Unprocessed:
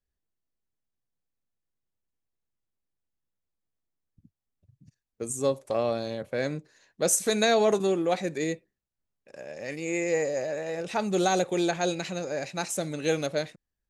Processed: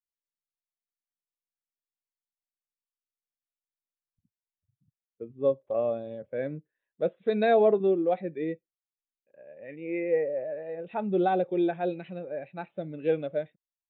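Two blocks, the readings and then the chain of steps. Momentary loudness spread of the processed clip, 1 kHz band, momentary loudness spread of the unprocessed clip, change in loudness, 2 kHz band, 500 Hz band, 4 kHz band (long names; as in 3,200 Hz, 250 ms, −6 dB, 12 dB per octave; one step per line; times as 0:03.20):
16 LU, −1.0 dB, 12 LU, −1.0 dB, −6.5 dB, +0.5 dB, −15.0 dB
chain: downsampling to 8,000 Hz
every bin expanded away from the loudest bin 1.5 to 1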